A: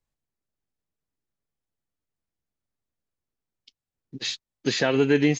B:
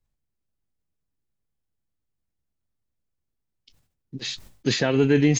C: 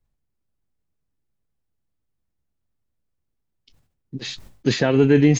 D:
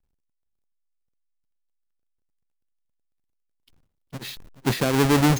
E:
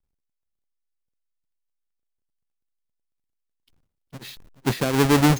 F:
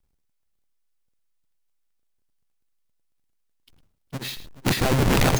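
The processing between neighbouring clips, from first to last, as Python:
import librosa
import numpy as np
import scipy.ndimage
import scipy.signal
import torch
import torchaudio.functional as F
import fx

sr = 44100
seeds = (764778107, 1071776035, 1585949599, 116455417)

y1 = fx.low_shelf(x, sr, hz=210.0, db=10.0)
y1 = fx.sustainer(y1, sr, db_per_s=100.0)
y1 = y1 * librosa.db_to_amplitude(-2.0)
y2 = fx.high_shelf(y1, sr, hz=2300.0, db=-6.5)
y2 = y2 * librosa.db_to_amplitude(4.0)
y3 = fx.halfwave_hold(y2, sr)
y3 = y3 + 10.0 ** (-16.5 / 20.0) * np.pad(y3, (int(426 * sr / 1000.0), 0))[:len(y3)]
y3 = y3 * librosa.db_to_amplitude(-7.5)
y4 = fx.upward_expand(y3, sr, threshold_db=-27.0, expansion=1.5)
y4 = y4 * librosa.db_to_amplitude(2.0)
y5 = (np.mod(10.0 ** (21.5 / 20.0) * y4 + 1.0, 2.0) - 1.0) / 10.0 ** (21.5 / 20.0)
y5 = y5 + 10.0 ** (-14.0 / 20.0) * np.pad(y5, (int(107 * sr / 1000.0), 0))[:len(y5)]
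y5 = y5 * librosa.db_to_amplitude(7.0)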